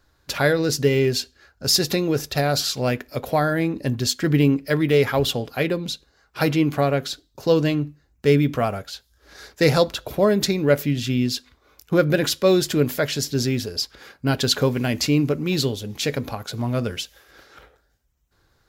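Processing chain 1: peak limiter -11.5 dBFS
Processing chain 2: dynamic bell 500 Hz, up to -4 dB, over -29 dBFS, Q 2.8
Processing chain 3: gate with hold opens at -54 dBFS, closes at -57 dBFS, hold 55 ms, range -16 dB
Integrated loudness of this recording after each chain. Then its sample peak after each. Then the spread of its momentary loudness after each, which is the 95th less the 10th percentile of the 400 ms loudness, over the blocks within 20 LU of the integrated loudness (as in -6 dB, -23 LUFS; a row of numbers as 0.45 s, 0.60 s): -23.0 LUFS, -22.5 LUFS, -21.5 LUFS; -11.5 dBFS, -5.0 dBFS, -3.5 dBFS; 8 LU, 10 LU, 10 LU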